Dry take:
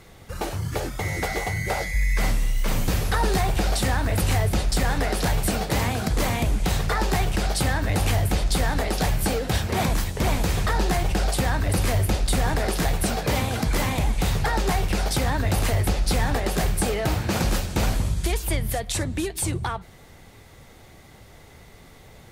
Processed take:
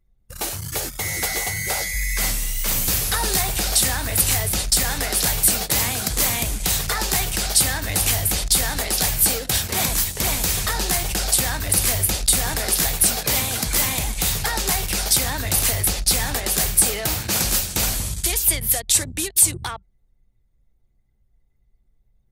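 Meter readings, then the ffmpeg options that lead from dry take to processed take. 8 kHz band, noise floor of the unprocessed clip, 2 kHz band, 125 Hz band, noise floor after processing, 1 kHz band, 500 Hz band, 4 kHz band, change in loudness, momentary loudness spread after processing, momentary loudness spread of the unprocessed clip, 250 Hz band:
+13.5 dB, -48 dBFS, +2.0 dB, -4.5 dB, -63 dBFS, -2.0 dB, -3.5 dB, +7.5 dB, +5.0 dB, 6 LU, 4 LU, -4.5 dB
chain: -af "crystalizer=i=6.5:c=0,anlmdn=251,volume=-4.5dB"

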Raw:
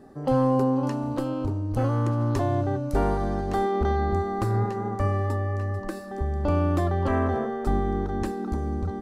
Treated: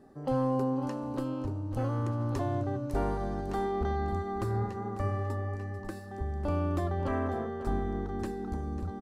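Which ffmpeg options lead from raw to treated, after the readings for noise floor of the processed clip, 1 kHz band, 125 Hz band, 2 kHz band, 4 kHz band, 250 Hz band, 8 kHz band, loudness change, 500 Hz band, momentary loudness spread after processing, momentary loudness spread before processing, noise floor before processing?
-41 dBFS, -7.0 dB, -7.0 dB, -7.0 dB, -7.0 dB, -6.5 dB, n/a, -7.0 dB, -7.0 dB, 6 LU, 6 LU, -34 dBFS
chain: -af "aecho=1:1:546:0.224,volume=-7dB"

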